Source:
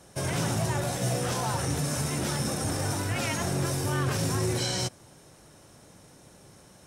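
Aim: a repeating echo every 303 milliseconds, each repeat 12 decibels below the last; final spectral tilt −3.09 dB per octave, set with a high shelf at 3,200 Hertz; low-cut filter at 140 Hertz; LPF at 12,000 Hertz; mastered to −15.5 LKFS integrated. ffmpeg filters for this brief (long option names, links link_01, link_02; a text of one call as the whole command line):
ffmpeg -i in.wav -af "highpass=140,lowpass=12000,highshelf=frequency=3200:gain=5,aecho=1:1:303|606|909:0.251|0.0628|0.0157,volume=12.5dB" out.wav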